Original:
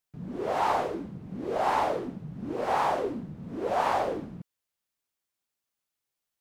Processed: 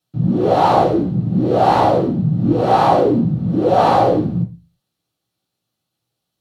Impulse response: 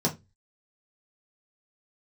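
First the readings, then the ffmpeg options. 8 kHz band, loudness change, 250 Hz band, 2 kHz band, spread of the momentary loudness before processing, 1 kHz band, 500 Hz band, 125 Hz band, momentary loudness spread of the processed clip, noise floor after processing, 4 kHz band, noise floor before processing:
n/a, +14.5 dB, +19.5 dB, +6.5 dB, 13 LU, +13.0 dB, +14.5 dB, +23.5 dB, 5 LU, -79 dBFS, +12.0 dB, under -85 dBFS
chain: -filter_complex "[1:a]atrim=start_sample=2205,asetrate=32634,aresample=44100[a];[0:a][a]afir=irnorm=-1:irlink=0"

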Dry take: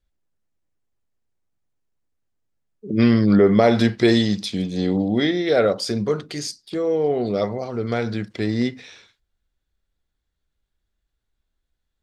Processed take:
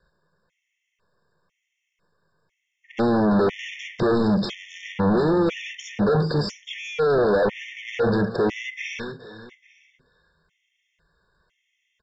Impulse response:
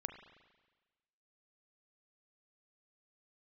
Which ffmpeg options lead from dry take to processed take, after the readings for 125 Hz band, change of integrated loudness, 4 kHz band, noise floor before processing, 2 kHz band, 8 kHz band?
-2.5 dB, -2.5 dB, -5.5 dB, -78 dBFS, 0.0 dB, -7.0 dB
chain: -filter_complex "[0:a]equalizer=f=160:w=7.1:g=13,aecho=1:1:1.9:0.7,asplit=2[a][b];[b]highpass=f=720:p=1,volume=29dB,asoftclip=type=tanh:threshold=-0.5dB[c];[a][c]amix=inputs=2:normalize=0,lowpass=f=2.9k:p=1,volume=-6dB,acrossover=split=570|840[d][e][f];[f]acompressor=threshold=-25dB:ratio=6[g];[d][e][g]amix=inputs=3:normalize=0,equalizer=f=200:t=o:w=0.33:g=6,equalizer=f=630:t=o:w=0.33:g=-6,equalizer=f=4k:t=o:w=0.33:g=-9,equalizer=f=6.3k:t=o:w=0.33:g=-6,asoftclip=type=tanh:threshold=-17.5dB,asplit=2[h][i];[i]aecho=0:1:425|850|1275:0.224|0.0649|0.0188[j];[h][j]amix=inputs=2:normalize=0,aresample=16000,aresample=44100,afftfilt=real='re*gt(sin(2*PI*1*pts/sr)*(1-2*mod(floor(b*sr/1024/1800),2)),0)':imag='im*gt(sin(2*PI*1*pts/sr)*(1-2*mod(floor(b*sr/1024/1800),2)),0)':win_size=1024:overlap=0.75"

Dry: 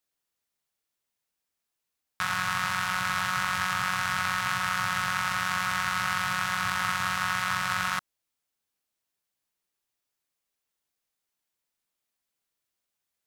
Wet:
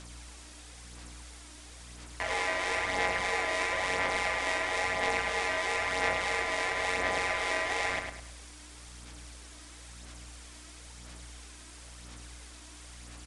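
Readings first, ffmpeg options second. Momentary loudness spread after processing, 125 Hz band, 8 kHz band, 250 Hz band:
19 LU, -6.0 dB, -3.0 dB, -2.5 dB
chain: -filter_complex "[0:a]aeval=exprs='val(0)+0.5*0.0141*sgn(val(0))':c=same,bandreject=f=3.5k:w=14,aeval=exprs='val(0)*sin(2*PI*640*n/s)':c=same,aeval=exprs='val(0)+0.00316*(sin(2*PI*60*n/s)+sin(2*PI*2*60*n/s)/2+sin(2*PI*3*60*n/s)/3+sin(2*PI*4*60*n/s)/4+sin(2*PI*5*60*n/s)/5)':c=same,aphaser=in_gain=1:out_gain=1:delay=3.2:decay=0.45:speed=0.99:type=sinusoidal,aresample=22050,aresample=44100,asplit=2[a][b];[b]adelay=103,lowpass=f=4.8k:p=1,volume=-5dB,asplit=2[c][d];[d]adelay=103,lowpass=f=4.8k:p=1,volume=0.38,asplit=2[e][f];[f]adelay=103,lowpass=f=4.8k:p=1,volume=0.38,asplit=2[g][h];[h]adelay=103,lowpass=f=4.8k:p=1,volume=0.38,asplit=2[i][j];[j]adelay=103,lowpass=f=4.8k:p=1,volume=0.38[k];[c][e][g][i][k]amix=inputs=5:normalize=0[l];[a][l]amix=inputs=2:normalize=0,volume=-3dB"

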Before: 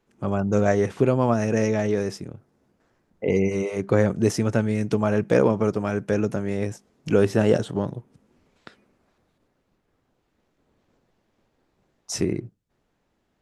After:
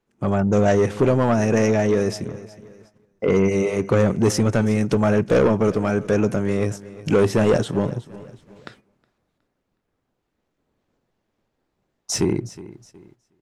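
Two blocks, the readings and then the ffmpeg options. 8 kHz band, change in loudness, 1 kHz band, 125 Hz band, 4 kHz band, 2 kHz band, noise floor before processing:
+5.5 dB, +3.0 dB, +3.5 dB, +3.5 dB, +5.5 dB, +3.0 dB, -72 dBFS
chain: -af "asoftclip=type=tanh:threshold=-16.5dB,aecho=1:1:366|732|1098:0.126|0.0466|0.0172,agate=range=-11dB:threshold=-55dB:ratio=16:detection=peak,volume=6dB"

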